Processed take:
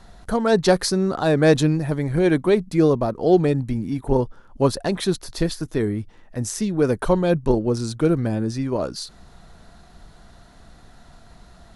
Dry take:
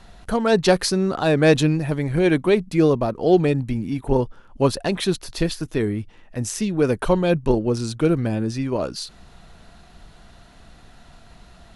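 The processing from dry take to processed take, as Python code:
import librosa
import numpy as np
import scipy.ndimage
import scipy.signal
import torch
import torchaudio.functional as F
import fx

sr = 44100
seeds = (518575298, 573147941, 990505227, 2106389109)

y = fx.peak_eq(x, sr, hz=2700.0, db=-7.0, octaves=0.61)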